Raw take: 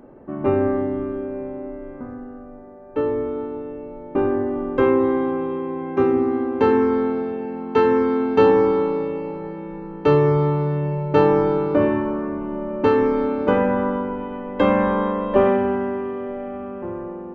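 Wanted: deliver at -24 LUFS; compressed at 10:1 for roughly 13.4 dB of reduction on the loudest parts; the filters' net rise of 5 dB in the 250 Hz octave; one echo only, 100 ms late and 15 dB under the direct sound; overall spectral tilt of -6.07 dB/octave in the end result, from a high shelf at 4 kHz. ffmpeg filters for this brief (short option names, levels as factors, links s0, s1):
-af "equalizer=f=250:t=o:g=6,highshelf=f=4000:g=-3,acompressor=threshold=0.0708:ratio=10,aecho=1:1:100:0.178,volume=1.5"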